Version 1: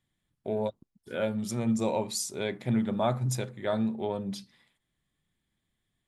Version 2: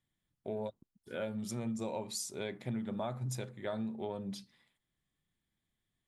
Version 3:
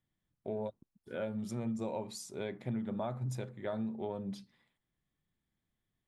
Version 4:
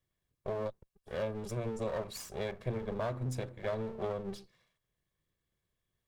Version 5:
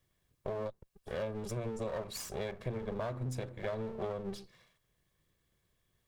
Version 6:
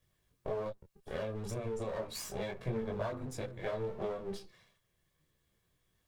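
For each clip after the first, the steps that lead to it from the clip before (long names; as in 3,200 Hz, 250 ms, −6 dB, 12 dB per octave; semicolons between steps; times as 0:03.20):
downward compressor 5 to 1, threshold −28 dBFS, peak gain reduction 7 dB; level −5.5 dB
high-shelf EQ 2,600 Hz −9 dB; level +1 dB
lower of the sound and its delayed copy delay 1.8 ms; level +2.5 dB
downward compressor 2 to 1, threshold −49 dBFS, peak gain reduction 11 dB; level +7.5 dB
micro pitch shift up and down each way 11 cents; level +4 dB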